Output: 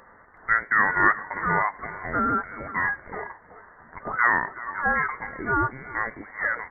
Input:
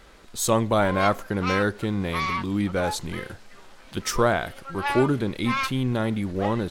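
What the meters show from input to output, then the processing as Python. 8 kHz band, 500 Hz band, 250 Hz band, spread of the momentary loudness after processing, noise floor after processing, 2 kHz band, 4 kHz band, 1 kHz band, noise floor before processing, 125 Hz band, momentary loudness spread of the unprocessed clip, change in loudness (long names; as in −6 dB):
below −40 dB, −10.5 dB, −10.0 dB, 12 LU, −52 dBFS, +7.5 dB, below −40 dB, +2.0 dB, −49 dBFS, −11.5 dB, 10 LU, 0.0 dB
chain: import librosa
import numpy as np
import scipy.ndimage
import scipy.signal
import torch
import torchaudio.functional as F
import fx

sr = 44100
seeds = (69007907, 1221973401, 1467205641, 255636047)

y = scipy.signal.sosfilt(scipy.signal.butter(4, 650.0, 'highpass', fs=sr, output='sos'), x)
y = fx.freq_invert(y, sr, carrier_hz=2500)
y = y + 10.0 ** (-17.0 / 20.0) * np.pad(y, (int(372 * sr / 1000.0), 0))[:len(y)]
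y = F.gain(torch.from_numpy(y), 4.0).numpy()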